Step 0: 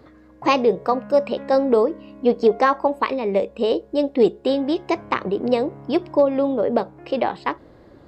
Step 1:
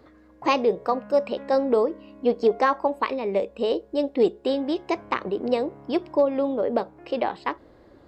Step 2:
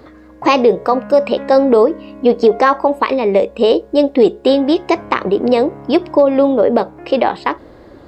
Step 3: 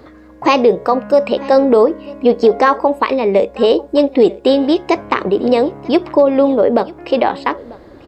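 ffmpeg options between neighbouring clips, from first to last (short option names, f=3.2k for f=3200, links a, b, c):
-af "equalizer=f=140:w=1.5:g=-6,volume=-3.5dB"
-af "alimiter=level_in=13.5dB:limit=-1dB:release=50:level=0:latency=1,volume=-1dB"
-af "aecho=1:1:943:0.0841"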